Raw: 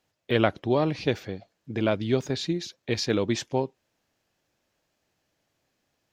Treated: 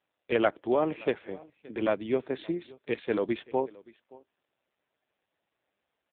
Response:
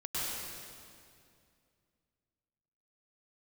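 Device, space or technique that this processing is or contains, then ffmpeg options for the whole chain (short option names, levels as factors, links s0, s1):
satellite phone: -af "highpass=300,lowpass=3000,aecho=1:1:574:0.075" -ar 8000 -c:a libopencore_amrnb -b:a 5900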